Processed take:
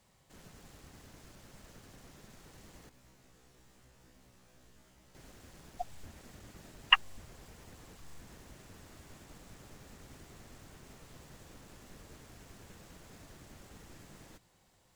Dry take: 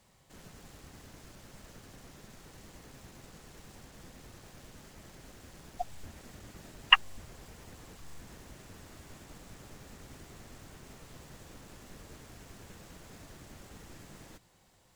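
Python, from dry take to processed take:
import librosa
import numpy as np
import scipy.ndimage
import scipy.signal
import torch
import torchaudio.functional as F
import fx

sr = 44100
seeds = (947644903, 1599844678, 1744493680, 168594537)

y = fx.comb_fb(x, sr, f0_hz=63.0, decay_s=0.3, harmonics='all', damping=0.0, mix_pct=100, at=(2.89, 5.15))
y = y * 10.0 ** (-3.0 / 20.0)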